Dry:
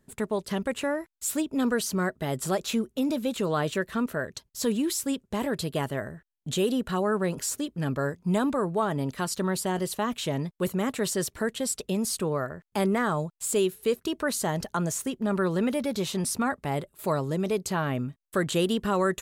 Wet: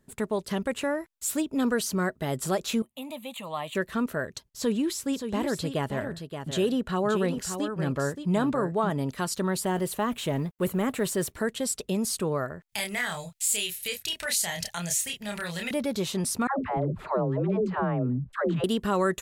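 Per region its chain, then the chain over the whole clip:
2.82–3.75 s: high-pass 530 Hz 6 dB/octave + static phaser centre 1.5 kHz, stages 6
4.50–8.90 s: treble shelf 7.8 kHz -9 dB + delay 575 ms -8 dB
9.62–11.32 s: companding laws mixed up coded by mu + peaking EQ 5.2 kHz -7 dB 1.1 oct
12.69–15.71 s: FFT filter 110 Hz 0 dB, 330 Hz -19 dB, 710 Hz -3 dB, 1.2 kHz -10 dB, 2 kHz +10 dB + compression 1.5:1, threshold -34 dBFS + doubling 29 ms -3.5 dB
16.47–18.64 s: low-pass 1.2 kHz + phase dispersion lows, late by 131 ms, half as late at 490 Hz + level flattener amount 50%
whole clip: none

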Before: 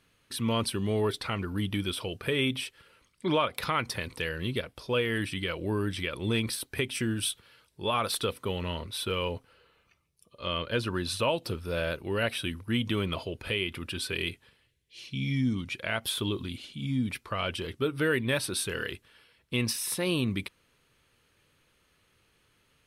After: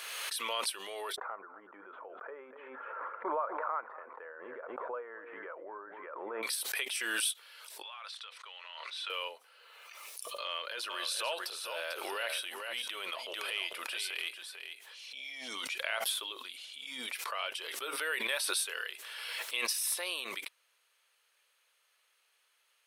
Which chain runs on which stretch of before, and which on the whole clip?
1.16–6.43 s: steep low-pass 1.4 kHz + delay 244 ms -16.5 dB
7.82–9.10 s: high-pass 1.1 kHz + distance through air 120 m + compression, threshold -39 dBFS
10.45–15.48 s: transient shaper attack -9 dB, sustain +3 dB + delay 446 ms -8 dB + tape noise reduction on one side only decoder only
whole clip: high-pass 560 Hz 24 dB/octave; tilt EQ +1.5 dB/octave; swell ahead of each attack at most 25 dB/s; trim -5.5 dB

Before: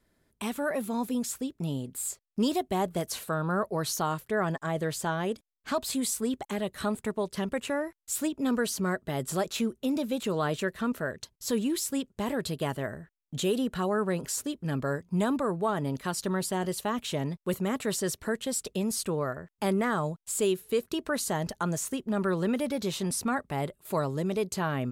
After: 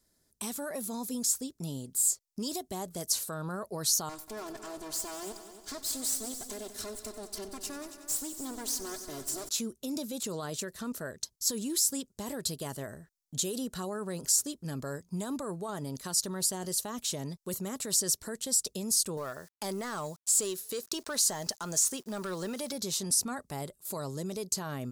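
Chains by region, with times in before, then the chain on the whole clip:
4.09–9.49 s: comb filter that takes the minimum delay 2.9 ms + compression 2:1, threshold -37 dBFS + multi-head delay 93 ms, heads all three, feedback 43%, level -14.5 dB
19.17–22.73 s: overdrive pedal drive 12 dB, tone 5.3 kHz, clips at -16.5 dBFS + compression 1.5:1, threshold -31 dBFS + word length cut 10-bit, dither none
whole clip: peak limiter -23 dBFS; resonant high shelf 3.8 kHz +11.5 dB, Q 1.5; trim -5.5 dB

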